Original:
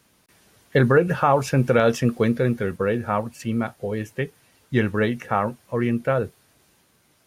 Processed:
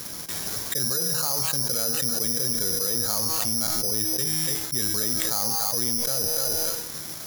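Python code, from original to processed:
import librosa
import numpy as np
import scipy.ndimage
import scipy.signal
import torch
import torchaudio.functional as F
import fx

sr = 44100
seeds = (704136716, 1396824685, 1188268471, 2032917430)

p1 = fx.echo_thinned(x, sr, ms=286, feedback_pct=24, hz=880.0, wet_db=-20)
p2 = (np.mod(10.0 ** (18.0 / 20.0) * p1 + 1.0, 2.0) - 1.0) / 10.0 ** (18.0 / 20.0)
p3 = p1 + (p2 * librosa.db_to_amplitude(-11.5))
p4 = scipy.signal.sosfilt(scipy.signal.butter(2, 3100.0, 'lowpass', fs=sr, output='sos'), p3)
p5 = fx.comb_fb(p4, sr, f0_hz=160.0, decay_s=1.0, harmonics='all', damping=0.0, mix_pct=70)
p6 = p5 + fx.echo_single(p5, sr, ms=297, db=-20.0, dry=0)
p7 = (np.kron(scipy.signal.resample_poly(p6, 1, 8), np.eye(8)[0]) * 8)[:len(p6)]
p8 = fx.env_flatten(p7, sr, amount_pct=100)
y = p8 * librosa.db_to_amplitude(-13.0)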